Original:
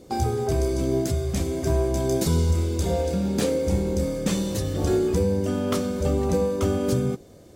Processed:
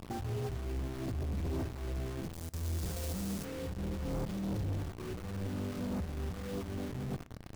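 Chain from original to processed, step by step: compressor with a negative ratio -29 dBFS, ratio -0.5; distance through air 260 m; bit crusher 6-bit; tone controls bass +12 dB, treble 0 dB, from 2.33 s treble +15 dB, from 3.43 s treble 0 dB; saturation -23 dBFS, distortion -8 dB; reverberation RT60 0.40 s, pre-delay 3 ms, DRR 16 dB; trim -9 dB

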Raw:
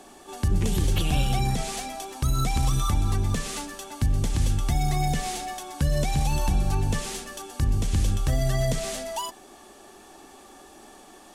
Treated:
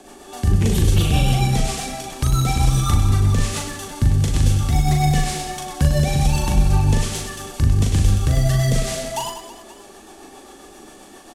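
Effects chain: rotary cabinet horn 7.5 Hz; on a send: reverse bouncing-ball echo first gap 40 ms, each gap 1.5×, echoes 5; on the sum: trim +6.5 dB

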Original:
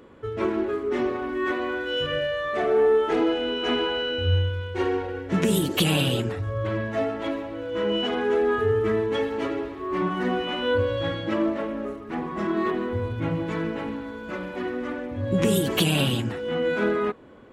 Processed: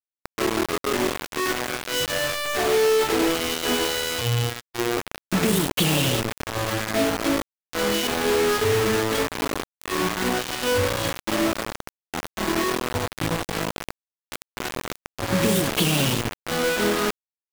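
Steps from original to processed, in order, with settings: 6.86–7.42 s: dynamic bell 260 Hz, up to +7 dB, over -42 dBFS, Q 1; bit crusher 4-bit; 4.21–4.97 s: robot voice 119 Hz

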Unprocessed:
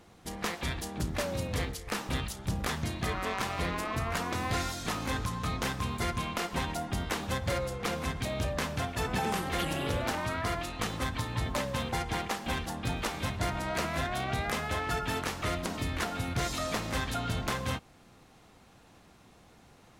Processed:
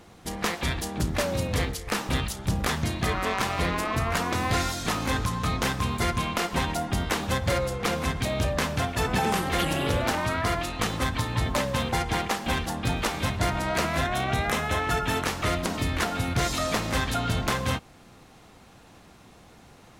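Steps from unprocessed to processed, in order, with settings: 14.04–15.25 s: band-stop 4.7 kHz, Q 9; trim +6 dB

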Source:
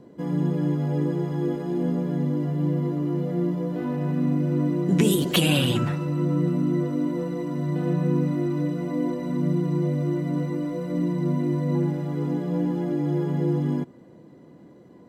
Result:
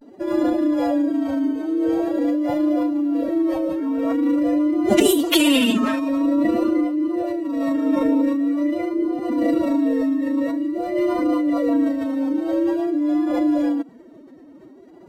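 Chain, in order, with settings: vibrato 0.47 Hz 85 cents; formant-preserving pitch shift +11.5 st; trim +5 dB

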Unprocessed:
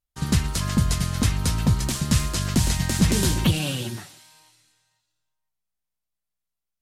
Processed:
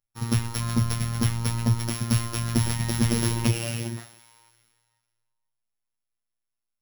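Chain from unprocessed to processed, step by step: sorted samples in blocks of 8 samples; robot voice 116 Hz

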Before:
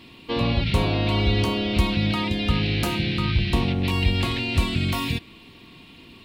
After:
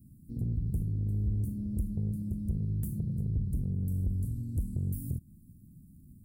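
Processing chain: inverse Chebyshev band-stop 690–3200 Hz, stop band 70 dB; compression 1.5:1, threshold -34 dBFS, peak gain reduction 7.5 dB; saturation -23.5 dBFS, distortion -15 dB

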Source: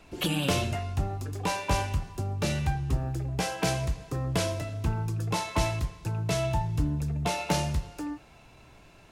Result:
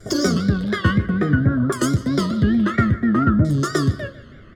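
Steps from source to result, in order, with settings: rattle on loud lows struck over -33 dBFS, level -34 dBFS; formant shift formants -3 st; comb 1.2 ms, depth 93%; wow and flutter 120 cents; feedback delay 301 ms, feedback 33%, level -18.5 dB; on a send at -14.5 dB: reverberation RT60 0.50 s, pre-delay 3 ms; on the sum: LFO low-pass saw down 0.29 Hz 610–3900 Hz; in parallel at -5.5 dB: saturation -18.5 dBFS, distortion -13 dB; on the sum: peaking EQ 1.8 kHz -11 dB 2.9 oct; speed mistake 7.5 ips tape played at 15 ips; trim +4 dB

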